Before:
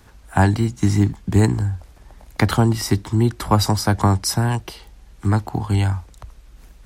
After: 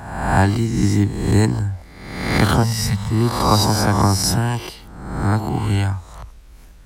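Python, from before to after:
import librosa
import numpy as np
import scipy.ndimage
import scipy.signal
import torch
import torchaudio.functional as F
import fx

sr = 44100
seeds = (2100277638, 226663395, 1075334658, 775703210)

y = fx.spec_swells(x, sr, rise_s=0.99)
y = fx.ellip_bandstop(y, sr, low_hz=210.0, high_hz=470.0, order=3, stop_db=40, at=(2.63, 3.11))
y = y * librosa.db_to_amplitude(-1.0)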